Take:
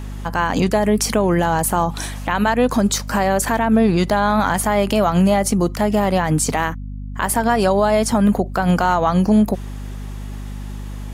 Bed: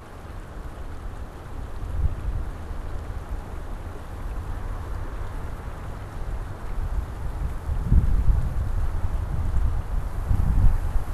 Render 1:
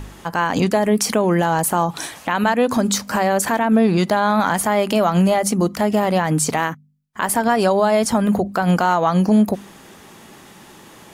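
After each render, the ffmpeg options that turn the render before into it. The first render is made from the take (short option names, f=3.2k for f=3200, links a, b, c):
-af "bandreject=f=50:t=h:w=4,bandreject=f=100:t=h:w=4,bandreject=f=150:t=h:w=4,bandreject=f=200:t=h:w=4,bandreject=f=250:t=h:w=4"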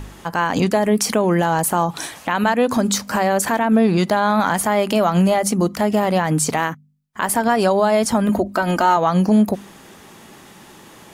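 -filter_complex "[0:a]asettb=1/sr,asplit=3[a][b][c];[a]atrim=end=8.294[d];[b]atrim=start=8.29:end=8.97,asetpts=PTS-STARTPTS,afade=t=in:d=0.004:c=qsin,afade=t=out:st=0.676:d=0.004:c=qsin,aecho=1:1:3.2:0.62,atrim=end_sample=29988[e];[c]atrim=start=8.966[f];[d][e]acrossfade=d=0.004:c1=hsin:c2=qsin[g];[g][f]acrossfade=d=0.004:c1=qsin:c2=hsin"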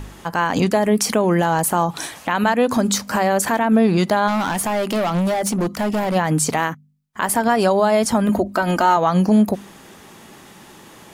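-filter_complex "[0:a]asplit=3[a][b][c];[a]afade=t=out:st=4.27:d=0.02[d];[b]volume=17dB,asoftclip=hard,volume=-17dB,afade=t=in:st=4.27:d=0.02,afade=t=out:st=6.14:d=0.02[e];[c]afade=t=in:st=6.14:d=0.02[f];[d][e][f]amix=inputs=3:normalize=0"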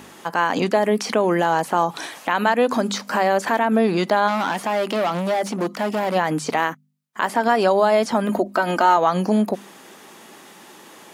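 -filter_complex "[0:a]acrossover=split=5100[a][b];[b]acompressor=threshold=-42dB:ratio=4:attack=1:release=60[c];[a][c]amix=inputs=2:normalize=0,highpass=260"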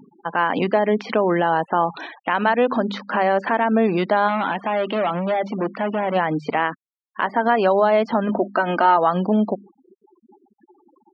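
-af "afftfilt=real='re*gte(hypot(re,im),0.0282)':imag='im*gte(hypot(re,im),0.0282)':win_size=1024:overlap=0.75,lowpass=f=3.5k:w=0.5412,lowpass=f=3.5k:w=1.3066"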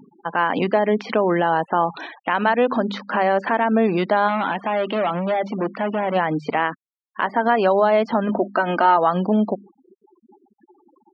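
-af anull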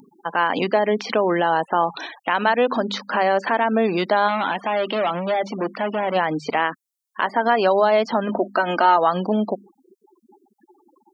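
-af "bass=f=250:g=-5,treble=f=4k:g=13"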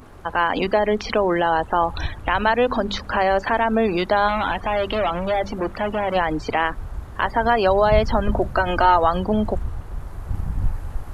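-filter_complex "[1:a]volume=-4dB[a];[0:a][a]amix=inputs=2:normalize=0"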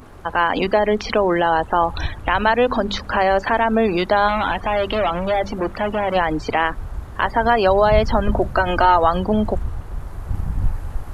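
-af "volume=2dB,alimiter=limit=-3dB:level=0:latency=1"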